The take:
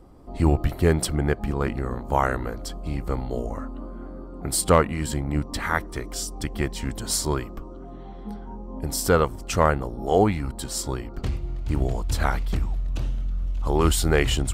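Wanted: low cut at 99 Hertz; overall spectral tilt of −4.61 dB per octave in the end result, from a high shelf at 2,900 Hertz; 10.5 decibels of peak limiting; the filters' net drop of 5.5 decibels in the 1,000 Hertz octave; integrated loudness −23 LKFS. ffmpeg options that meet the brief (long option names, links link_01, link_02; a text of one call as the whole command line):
ffmpeg -i in.wav -af "highpass=99,equalizer=frequency=1000:width_type=o:gain=-7,highshelf=frequency=2900:gain=-3,volume=8.5dB,alimiter=limit=-9dB:level=0:latency=1" out.wav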